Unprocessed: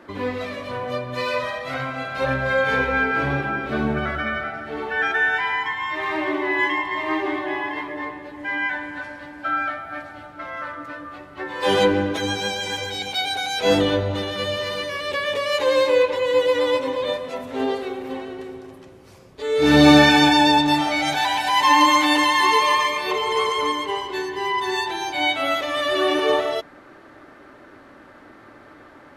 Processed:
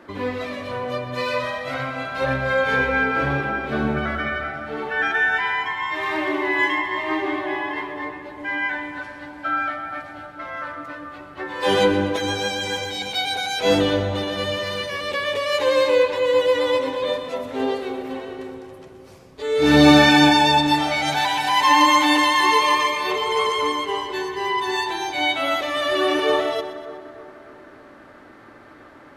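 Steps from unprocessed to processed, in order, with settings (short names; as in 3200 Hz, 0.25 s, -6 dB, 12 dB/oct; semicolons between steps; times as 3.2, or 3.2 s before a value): 5.92–6.75 high shelf 5000 Hz +6 dB; split-band echo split 1500 Hz, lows 0.302 s, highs 0.123 s, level -13 dB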